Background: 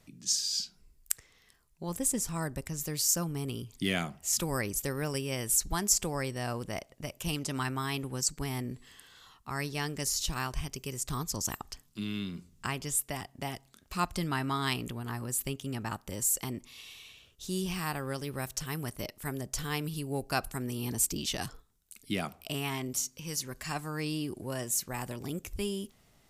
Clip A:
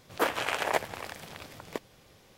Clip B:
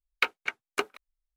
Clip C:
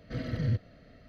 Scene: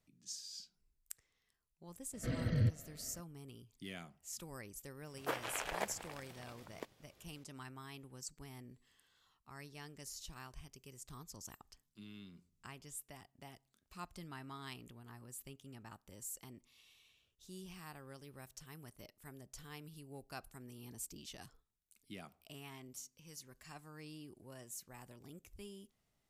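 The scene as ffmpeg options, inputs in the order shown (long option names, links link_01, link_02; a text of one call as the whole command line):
ffmpeg -i bed.wav -i cue0.wav -i cue1.wav -i cue2.wav -filter_complex "[0:a]volume=-17.5dB[link_01];[3:a]atrim=end=1.08,asetpts=PTS-STARTPTS,volume=-3dB,afade=type=in:duration=0.004:curve=hsin,afade=type=out:start_time=1.076:duration=0.004:curve=hsin,adelay=2130[link_02];[1:a]atrim=end=2.37,asetpts=PTS-STARTPTS,volume=-11.5dB,afade=type=in:duration=0.004:curve=hsin,afade=type=out:start_time=2.366:duration=0.004:curve=hsin,adelay=5070[link_03];[link_01][link_02][link_03]amix=inputs=3:normalize=0" out.wav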